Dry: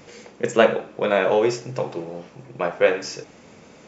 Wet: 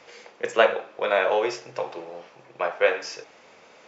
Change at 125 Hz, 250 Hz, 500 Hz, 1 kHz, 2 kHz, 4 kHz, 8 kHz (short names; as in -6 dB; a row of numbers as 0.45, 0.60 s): -17.5 dB, -11.0 dB, -3.5 dB, -0.5 dB, 0.0 dB, -1.0 dB, n/a